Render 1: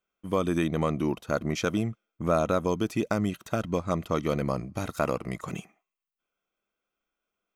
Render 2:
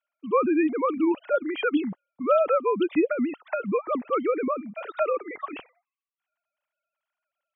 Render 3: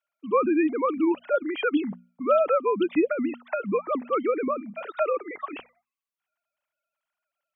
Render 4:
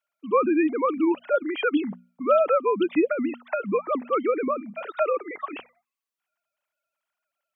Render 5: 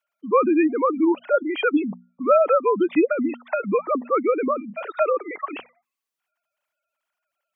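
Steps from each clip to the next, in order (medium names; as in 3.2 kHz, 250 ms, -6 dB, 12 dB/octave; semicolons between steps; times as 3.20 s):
formants replaced by sine waves; trim +3 dB
hum notches 60/120/180/240 Hz
bass shelf 99 Hz -8 dB; trim +1.5 dB
spectral gate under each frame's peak -25 dB strong; trim +3 dB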